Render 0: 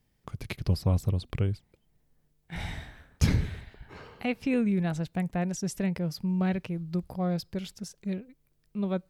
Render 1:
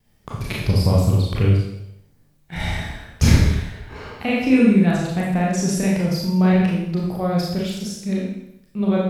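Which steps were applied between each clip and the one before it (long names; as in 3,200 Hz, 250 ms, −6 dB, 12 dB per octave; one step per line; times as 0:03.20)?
four-comb reverb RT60 0.78 s, combs from 27 ms, DRR −4.5 dB
pitch vibrato 0.43 Hz 7.7 cents
level +6 dB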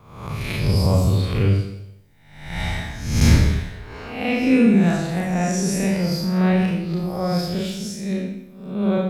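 peak hold with a rise ahead of every peak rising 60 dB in 0.74 s
level −2.5 dB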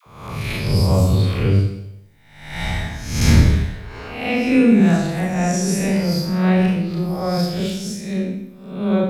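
all-pass dispersion lows, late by 63 ms, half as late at 620 Hz
level +2 dB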